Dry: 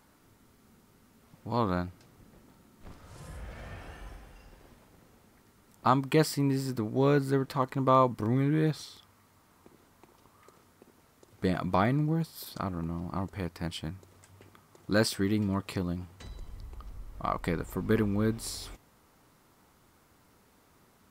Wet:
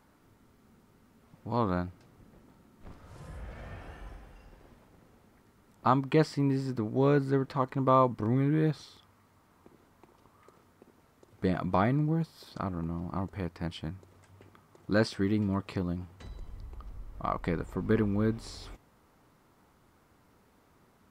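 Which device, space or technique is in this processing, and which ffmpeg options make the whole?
behind a face mask: -filter_complex "[0:a]acrossover=split=7600[s0][s1];[s1]acompressor=threshold=0.00112:ratio=4:attack=1:release=60[s2];[s0][s2]amix=inputs=2:normalize=0,highshelf=f=3000:g=-7.5"

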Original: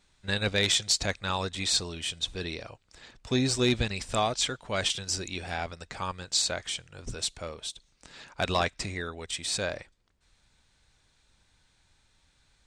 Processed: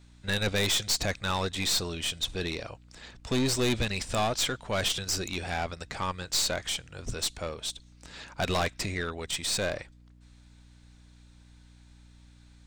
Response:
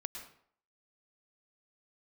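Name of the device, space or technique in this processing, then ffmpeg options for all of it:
valve amplifier with mains hum: -af "aeval=exprs='(tanh(22.4*val(0)+0.4)-tanh(0.4))/22.4':c=same,aeval=exprs='val(0)+0.00126*(sin(2*PI*60*n/s)+sin(2*PI*2*60*n/s)/2+sin(2*PI*3*60*n/s)/3+sin(2*PI*4*60*n/s)/4+sin(2*PI*5*60*n/s)/5)':c=same,volume=1.68"

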